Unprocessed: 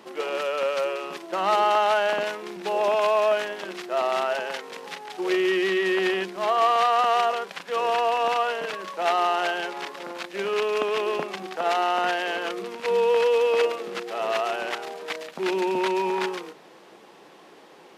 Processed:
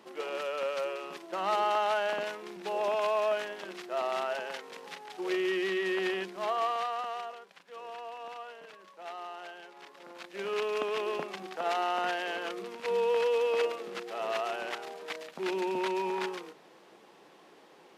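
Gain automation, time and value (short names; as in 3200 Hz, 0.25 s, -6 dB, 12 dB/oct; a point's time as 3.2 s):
6.45 s -7.5 dB
7.42 s -19.5 dB
9.68 s -19.5 dB
10.51 s -7 dB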